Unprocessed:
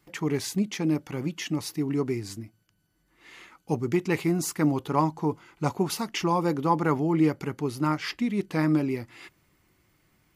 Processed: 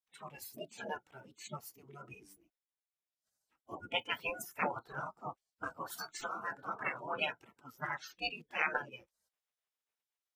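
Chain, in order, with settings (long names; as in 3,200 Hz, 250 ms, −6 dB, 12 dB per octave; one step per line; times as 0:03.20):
formants moved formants +3 semitones
noise reduction from a noise print of the clip's start 29 dB
gate on every frequency bin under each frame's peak −20 dB weak
level +6.5 dB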